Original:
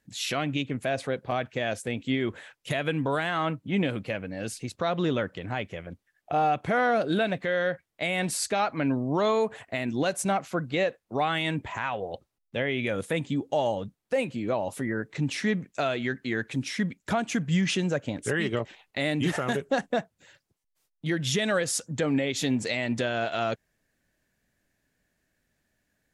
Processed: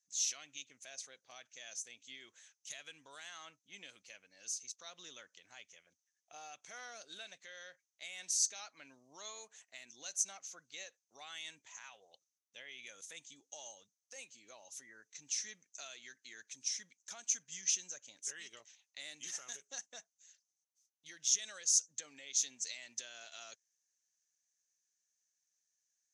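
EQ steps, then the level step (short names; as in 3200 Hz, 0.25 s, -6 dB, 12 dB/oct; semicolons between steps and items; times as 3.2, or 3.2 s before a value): band-pass 6200 Hz, Q 10; +9.5 dB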